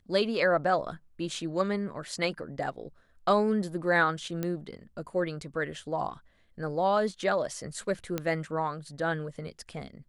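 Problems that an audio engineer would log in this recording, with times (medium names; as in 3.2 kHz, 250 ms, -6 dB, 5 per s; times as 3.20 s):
4.43 s: pop -18 dBFS
8.18 s: pop -16 dBFS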